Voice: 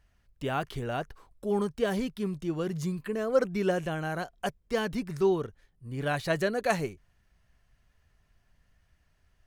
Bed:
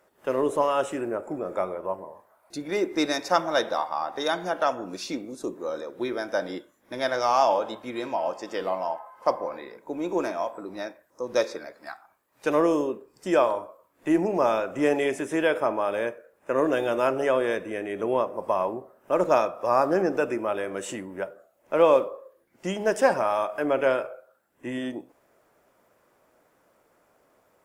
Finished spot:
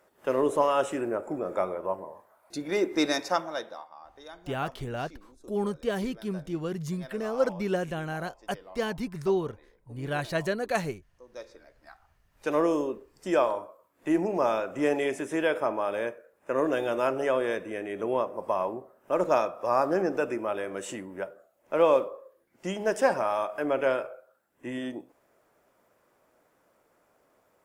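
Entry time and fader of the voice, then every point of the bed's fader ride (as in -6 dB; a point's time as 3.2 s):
4.05 s, -1.0 dB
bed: 3.18 s -0.5 dB
3.95 s -20 dB
11.32 s -20 dB
12.58 s -3 dB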